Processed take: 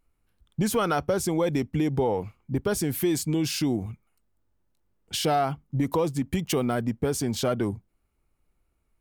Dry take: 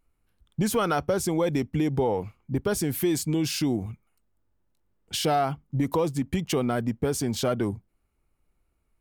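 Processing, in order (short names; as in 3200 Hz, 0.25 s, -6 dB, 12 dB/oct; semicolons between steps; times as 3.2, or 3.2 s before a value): 6.31–6.75 high shelf 11000 Hz +8 dB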